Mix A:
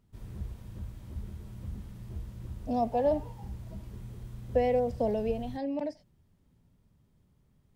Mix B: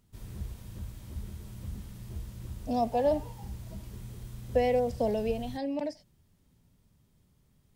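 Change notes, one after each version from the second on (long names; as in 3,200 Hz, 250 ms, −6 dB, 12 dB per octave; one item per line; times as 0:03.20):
master: add high-shelf EQ 2,800 Hz +9.5 dB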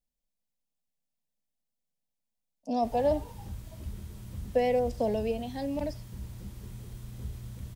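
background: entry +2.70 s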